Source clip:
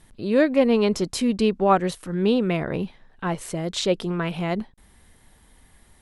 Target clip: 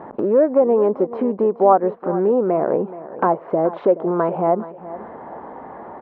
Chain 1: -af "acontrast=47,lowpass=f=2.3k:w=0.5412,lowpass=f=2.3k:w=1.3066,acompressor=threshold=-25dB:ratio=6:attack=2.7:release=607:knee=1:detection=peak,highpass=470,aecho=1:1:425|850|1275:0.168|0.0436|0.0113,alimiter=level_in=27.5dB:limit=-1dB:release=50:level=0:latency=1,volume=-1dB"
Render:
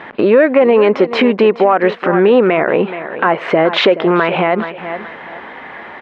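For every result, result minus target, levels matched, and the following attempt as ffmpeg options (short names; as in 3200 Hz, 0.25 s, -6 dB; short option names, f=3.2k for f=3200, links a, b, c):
2000 Hz band +14.5 dB; compressor: peak gain reduction -8 dB
-af "acontrast=47,lowpass=f=1k:w=0.5412,lowpass=f=1k:w=1.3066,acompressor=threshold=-25dB:ratio=6:attack=2.7:release=607:knee=1:detection=peak,highpass=470,aecho=1:1:425|850|1275:0.168|0.0436|0.0113,alimiter=level_in=27.5dB:limit=-1dB:release=50:level=0:latency=1,volume=-1dB"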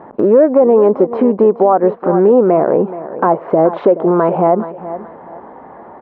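compressor: peak gain reduction -8.5 dB
-af "acontrast=47,lowpass=f=1k:w=0.5412,lowpass=f=1k:w=1.3066,acompressor=threshold=-35dB:ratio=6:attack=2.7:release=607:knee=1:detection=peak,highpass=470,aecho=1:1:425|850|1275:0.168|0.0436|0.0113,alimiter=level_in=27.5dB:limit=-1dB:release=50:level=0:latency=1,volume=-1dB"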